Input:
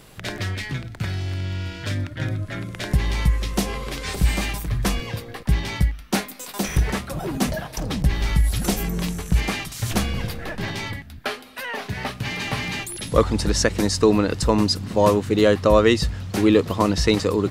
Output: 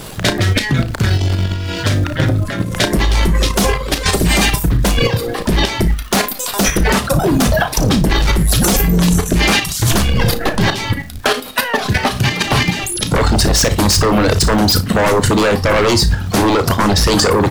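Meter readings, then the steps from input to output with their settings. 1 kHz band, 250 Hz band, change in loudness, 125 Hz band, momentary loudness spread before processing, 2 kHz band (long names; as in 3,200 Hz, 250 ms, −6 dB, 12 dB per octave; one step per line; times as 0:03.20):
+10.0 dB, +7.0 dB, +8.5 dB, +9.0 dB, 12 LU, +11.0 dB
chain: reverb reduction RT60 0.75 s
parametric band 2,200 Hz −4.5 dB 0.65 octaves
brickwall limiter −12.5 dBFS, peak gain reduction 10 dB
sine wavefolder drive 8 dB, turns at −12.5 dBFS
transient designer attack +6 dB, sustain +10 dB
on a send: flutter between parallel walls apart 9.8 metres, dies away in 0.24 s
on the sum: surface crackle 570 per second −33 dBFS
output level in coarse steps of 9 dB
double-tracking delay 34 ms −12 dB
level +5.5 dB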